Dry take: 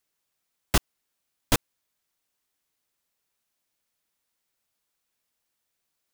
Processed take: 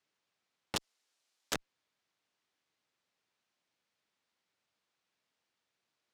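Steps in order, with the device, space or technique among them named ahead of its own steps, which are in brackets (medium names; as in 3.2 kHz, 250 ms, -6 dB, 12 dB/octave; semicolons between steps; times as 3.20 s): valve radio (band-pass 110–4700 Hz; valve stage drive 24 dB, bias 0.2; transformer saturation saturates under 550 Hz); 0.76–1.54 s: tone controls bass -13 dB, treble +10 dB; trim +1 dB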